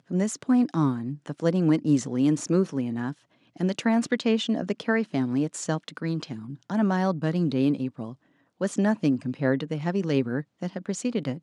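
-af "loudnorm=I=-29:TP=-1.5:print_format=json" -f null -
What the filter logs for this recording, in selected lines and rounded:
"input_i" : "-26.5",
"input_tp" : "-9.9",
"input_lra" : "1.7",
"input_thresh" : "-36.7",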